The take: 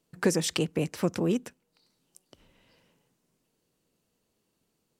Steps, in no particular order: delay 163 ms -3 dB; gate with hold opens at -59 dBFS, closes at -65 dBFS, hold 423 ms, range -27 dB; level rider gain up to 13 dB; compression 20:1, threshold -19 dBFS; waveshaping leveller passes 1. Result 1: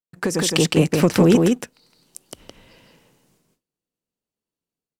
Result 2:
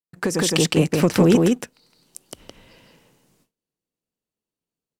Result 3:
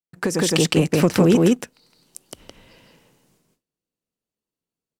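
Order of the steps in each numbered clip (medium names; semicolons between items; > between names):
gate with hold > waveshaping leveller > compression > level rider > delay; waveshaping leveller > compression > delay > gate with hold > level rider; gate with hold > delay > waveshaping leveller > compression > level rider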